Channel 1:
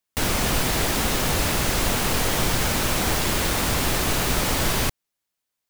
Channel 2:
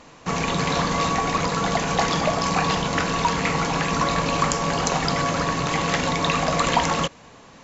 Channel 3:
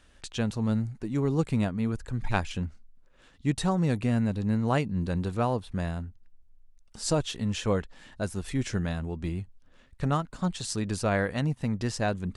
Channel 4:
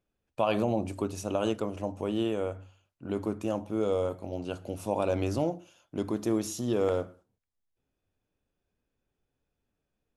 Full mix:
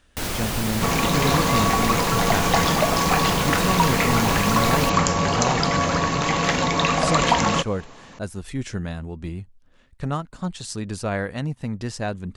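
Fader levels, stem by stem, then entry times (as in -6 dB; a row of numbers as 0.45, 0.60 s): -4.5, +1.5, +0.5, -14.0 dB; 0.00, 0.55, 0.00, 0.00 s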